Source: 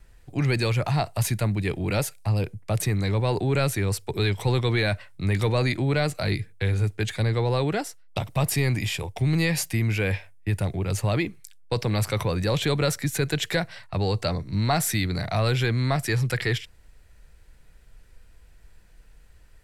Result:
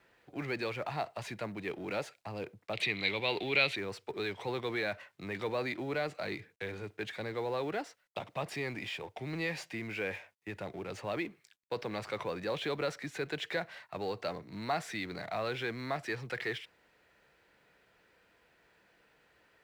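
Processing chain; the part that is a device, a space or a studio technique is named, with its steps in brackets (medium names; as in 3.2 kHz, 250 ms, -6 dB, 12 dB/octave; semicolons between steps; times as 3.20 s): phone line with mismatched companding (band-pass 300–3300 Hz; companding laws mixed up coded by mu); 2.73–3.76 s: high-order bell 3 kHz +15.5 dB 1.3 oct; trim -8.5 dB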